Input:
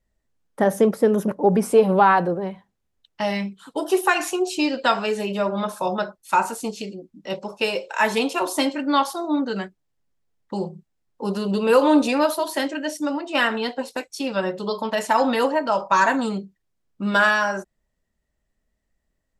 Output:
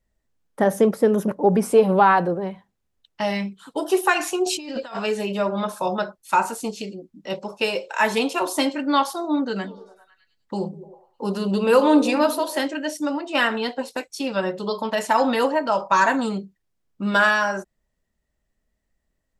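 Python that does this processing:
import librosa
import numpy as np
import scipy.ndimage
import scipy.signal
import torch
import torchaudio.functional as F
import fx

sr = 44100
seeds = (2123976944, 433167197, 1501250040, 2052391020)

y = fx.over_compress(x, sr, threshold_db=-31.0, ratio=-1.0, at=(4.46, 4.98))
y = fx.echo_stepped(y, sr, ms=101, hz=200.0, octaves=0.7, feedback_pct=70, wet_db=-10, at=(9.63, 12.61), fade=0.02)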